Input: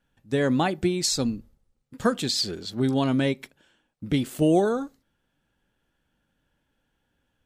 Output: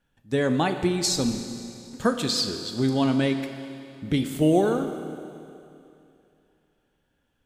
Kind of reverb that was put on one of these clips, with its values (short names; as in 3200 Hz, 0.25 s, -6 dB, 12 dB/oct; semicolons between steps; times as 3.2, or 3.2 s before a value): Schroeder reverb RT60 2.7 s, combs from 26 ms, DRR 7.5 dB